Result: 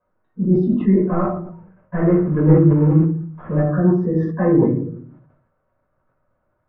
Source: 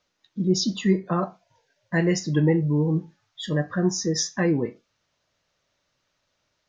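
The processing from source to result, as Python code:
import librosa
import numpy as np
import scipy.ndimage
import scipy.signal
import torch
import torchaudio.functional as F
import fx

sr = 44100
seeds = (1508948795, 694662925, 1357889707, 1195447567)

y = fx.cvsd(x, sr, bps=16000, at=(1.01, 3.61))
y = scipy.signal.sosfilt(scipy.signal.butter(4, 1400.0, 'lowpass', fs=sr, output='sos'), y)
y = fx.notch(y, sr, hz=830.0, q=12.0)
y = fx.room_shoebox(y, sr, seeds[0], volume_m3=440.0, walls='furnished', distance_m=5.2)
y = fx.sustainer(y, sr, db_per_s=66.0)
y = F.gain(torch.from_numpy(y), -2.5).numpy()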